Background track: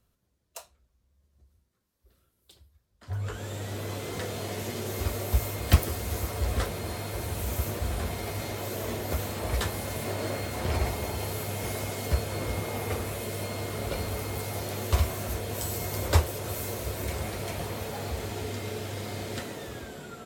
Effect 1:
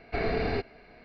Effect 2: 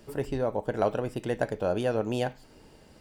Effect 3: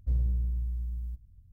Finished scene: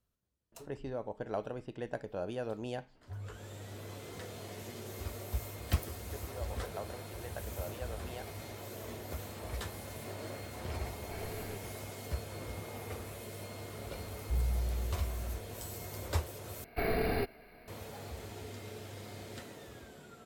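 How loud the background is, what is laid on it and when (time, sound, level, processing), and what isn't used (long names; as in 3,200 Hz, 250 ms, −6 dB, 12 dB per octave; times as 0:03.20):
background track −11 dB
0:00.52: mix in 2 −10.5 dB + low-pass that shuts in the quiet parts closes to 1,500 Hz, open at −22.5 dBFS
0:05.95: mix in 2 −14.5 dB + high-pass filter 460 Hz
0:10.97: mix in 1 −16 dB
0:14.23: mix in 3 −4.5 dB
0:16.64: overwrite with 1 −3 dB + bad sample-rate conversion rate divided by 3×, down none, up hold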